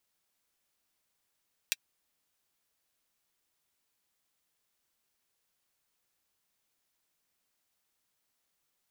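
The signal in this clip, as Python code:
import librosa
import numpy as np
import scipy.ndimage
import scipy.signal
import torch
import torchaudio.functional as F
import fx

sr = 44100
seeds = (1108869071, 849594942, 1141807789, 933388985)

y = fx.drum_hat(sr, length_s=0.24, from_hz=2400.0, decay_s=0.04)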